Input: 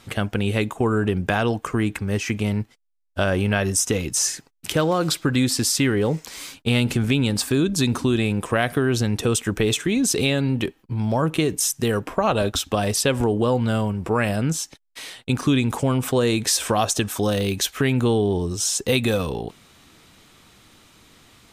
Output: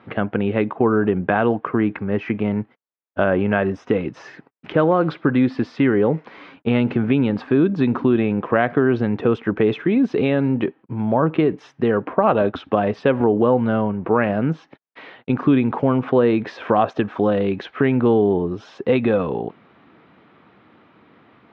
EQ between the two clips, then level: high-pass 180 Hz 12 dB/octave; low-pass 1.9 kHz 12 dB/octave; distance through air 280 m; +5.5 dB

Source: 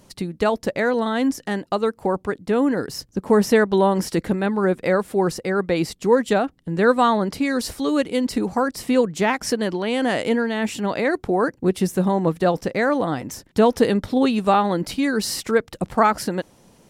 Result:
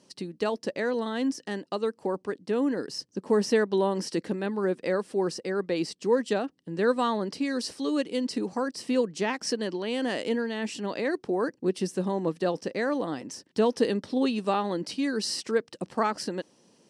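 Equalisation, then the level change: cabinet simulation 300–8000 Hz, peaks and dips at 720 Hz -3 dB, 1.4 kHz -5 dB, 2.2 kHz -7 dB, 3.6 kHz -6 dB, 7 kHz -8 dB; peaking EQ 850 Hz -8.5 dB 2.4 oct; 0.0 dB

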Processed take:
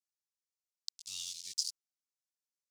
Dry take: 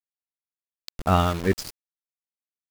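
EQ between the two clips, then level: inverse Chebyshev high-pass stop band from 1.6 kHz, stop band 60 dB; distance through air 96 m; +11.0 dB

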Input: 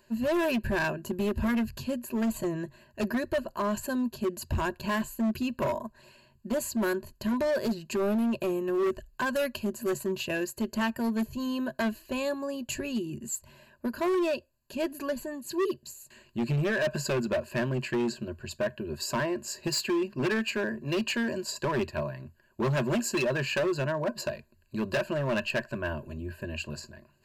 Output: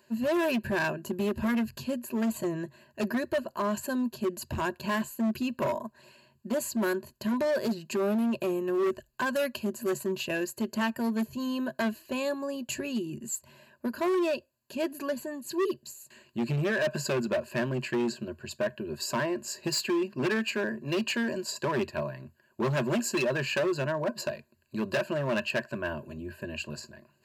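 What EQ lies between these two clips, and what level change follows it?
high-pass 120 Hz 12 dB/octave; 0.0 dB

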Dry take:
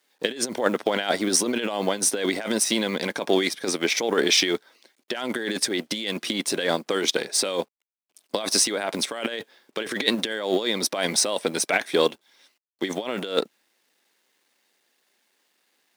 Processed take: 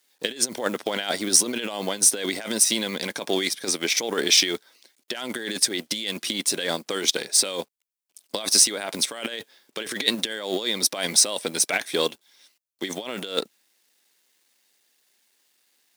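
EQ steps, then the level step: bass shelf 110 Hz +7 dB; treble shelf 3.2 kHz +11.5 dB; -5.0 dB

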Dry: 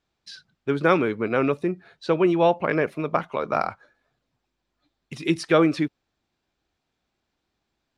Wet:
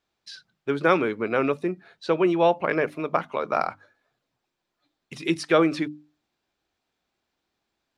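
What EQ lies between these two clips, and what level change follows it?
bass shelf 170 Hz -7.5 dB; hum notches 50/100/150/200/250/300 Hz; 0.0 dB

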